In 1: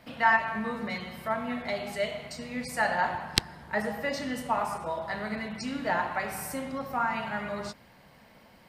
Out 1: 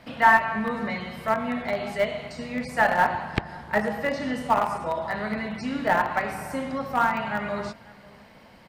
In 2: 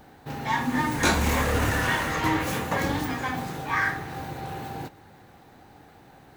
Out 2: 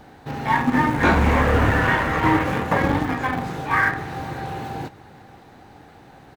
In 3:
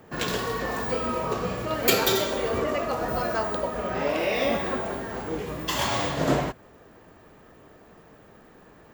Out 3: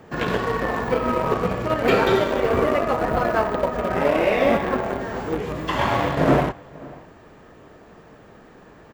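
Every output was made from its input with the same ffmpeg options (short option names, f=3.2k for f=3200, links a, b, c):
-filter_complex "[0:a]aeval=exprs='(tanh(5.01*val(0)+0.05)-tanh(0.05))/5.01':c=same,highshelf=f=11k:g=-11.5,asplit=2[a][b];[b]acrusher=bits=3:mix=0:aa=0.000001,volume=-9dB[c];[a][c]amix=inputs=2:normalize=0,acrossover=split=2600[d][e];[e]acompressor=threshold=-48dB:ratio=4:attack=1:release=60[f];[d][f]amix=inputs=2:normalize=0,asplit=2[g][h];[h]adelay=542.3,volume=-22dB,highshelf=f=4k:g=-12.2[i];[g][i]amix=inputs=2:normalize=0,volume=5dB"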